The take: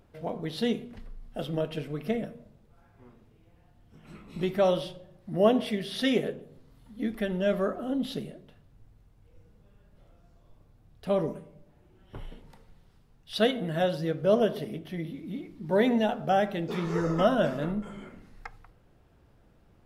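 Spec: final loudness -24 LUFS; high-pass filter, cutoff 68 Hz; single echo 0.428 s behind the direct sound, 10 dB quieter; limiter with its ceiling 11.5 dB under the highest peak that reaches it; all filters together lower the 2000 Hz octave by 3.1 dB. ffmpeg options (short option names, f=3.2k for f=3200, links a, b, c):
-af "highpass=68,equalizer=f=2k:t=o:g=-4,alimiter=limit=-20dB:level=0:latency=1,aecho=1:1:428:0.316,volume=8dB"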